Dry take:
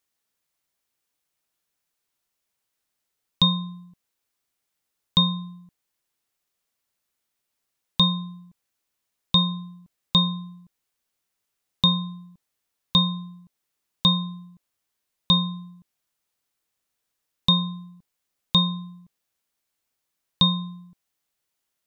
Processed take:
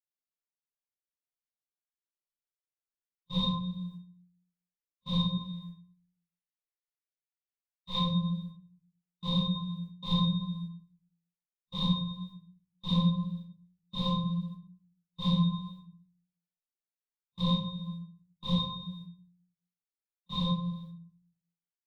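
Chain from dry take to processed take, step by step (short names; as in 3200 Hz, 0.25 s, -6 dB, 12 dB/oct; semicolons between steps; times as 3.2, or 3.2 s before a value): phase scrambler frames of 0.2 s; feedback echo 0.124 s, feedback 47%, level -21.5 dB; gate -47 dBFS, range -25 dB; 5.37–8 graphic EQ 125/250/2000 Hz -4/-11/+5 dB; compressor 2.5:1, threshold -30 dBFS, peak gain reduction 12 dB; high shelf 4500 Hz -5 dB; shoebox room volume 38 m³, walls mixed, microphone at 0.86 m; gain -3 dB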